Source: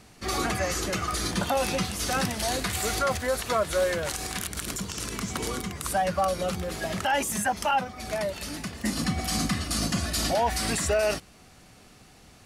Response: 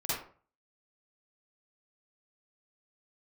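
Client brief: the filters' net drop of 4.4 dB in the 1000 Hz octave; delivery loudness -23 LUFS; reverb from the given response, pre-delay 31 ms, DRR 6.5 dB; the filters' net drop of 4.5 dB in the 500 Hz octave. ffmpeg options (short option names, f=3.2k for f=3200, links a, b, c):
-filter_complex "[0:a]equalizer=f=500:t=o:g=-4,equalizer=f=1k:t=o:g=-4.5,asplit=2[a][b];[1:a]atrim=start_sample=2205,adelay=31[c];[b][c]afir=irnorm=-1:irlink=0,volume=-12.5dB[d];[a][d]amix=inputs=2:normalize=0,volume=5.5dB"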